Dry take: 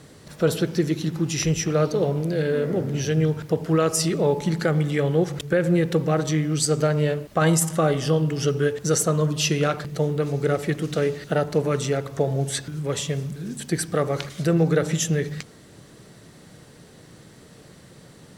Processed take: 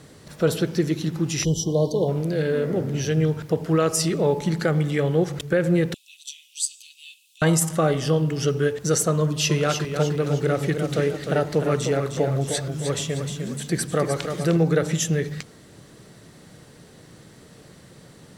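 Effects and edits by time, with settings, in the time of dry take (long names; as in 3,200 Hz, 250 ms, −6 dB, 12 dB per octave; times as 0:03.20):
0:01.44–0:02.08: time-frequency box erased 1,100–2,900 Hz
0:05.94–0:07.42: Chebyshev high-pass with heavy ripple 2,500 Hz, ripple 6 dB
0:09.19–0:14.57: feedback echo with a swinging delay time 306 ms, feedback 45%, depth 68 cents, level −7 dB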